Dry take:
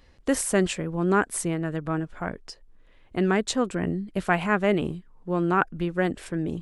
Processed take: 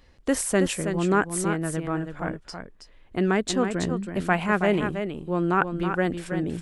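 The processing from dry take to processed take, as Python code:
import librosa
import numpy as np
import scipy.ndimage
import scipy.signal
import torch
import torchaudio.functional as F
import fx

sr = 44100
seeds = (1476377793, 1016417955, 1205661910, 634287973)

y = x + 10.0 ** (-7.5 / 20.0) * np.pad(x, (int(323 * sr / 1000.0), 0))[:len(x)]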